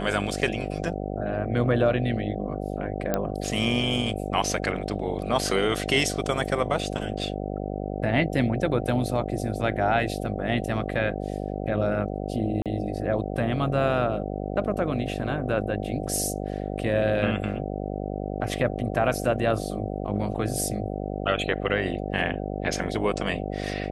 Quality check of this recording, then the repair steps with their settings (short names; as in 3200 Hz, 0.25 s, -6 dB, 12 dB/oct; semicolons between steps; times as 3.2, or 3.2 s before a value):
buzz 50 Hz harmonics 15 -31 dBFS
3.14 pop -10 dBFS
12.62–12.66 gap 37 ms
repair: de-click; de-hum 50 Hz, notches 15; interpolate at 12.62, 37 ms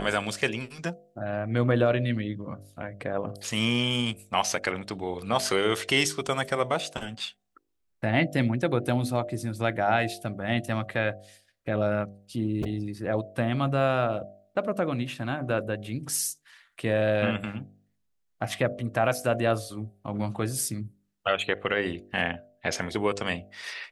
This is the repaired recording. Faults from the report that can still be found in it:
none